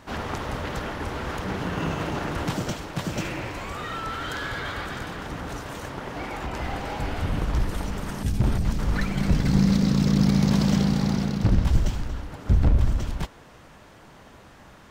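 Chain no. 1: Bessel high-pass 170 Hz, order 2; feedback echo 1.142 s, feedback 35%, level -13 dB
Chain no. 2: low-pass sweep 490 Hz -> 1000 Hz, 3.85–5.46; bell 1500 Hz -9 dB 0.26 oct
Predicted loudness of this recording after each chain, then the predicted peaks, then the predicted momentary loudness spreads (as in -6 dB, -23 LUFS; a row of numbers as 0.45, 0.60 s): -29.5, -26.0 LUFS; -10.0, -8.0 dBFS; 15, 13 LU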